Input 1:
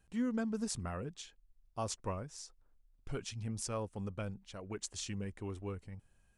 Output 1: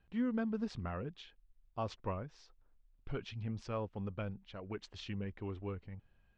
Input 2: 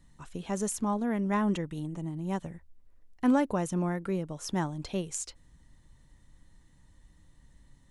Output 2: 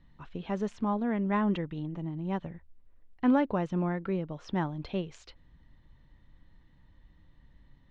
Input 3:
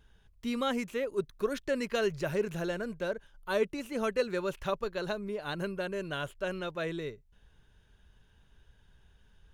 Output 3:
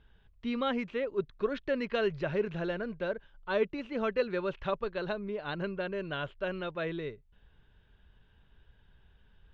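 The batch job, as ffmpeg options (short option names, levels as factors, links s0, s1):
-af "lowpass=f=3800:w=0.5412,lowpass=f=3800:w=1.3066"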